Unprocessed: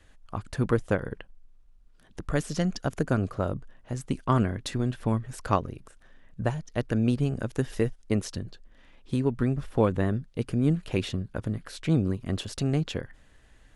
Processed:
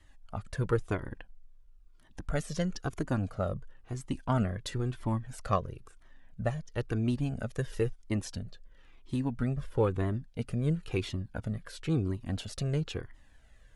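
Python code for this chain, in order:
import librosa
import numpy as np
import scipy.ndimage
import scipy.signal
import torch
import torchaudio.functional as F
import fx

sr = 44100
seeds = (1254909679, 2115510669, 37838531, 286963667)

y = fx.comb_cascade(x, sr, direction='falling', hz=0.99)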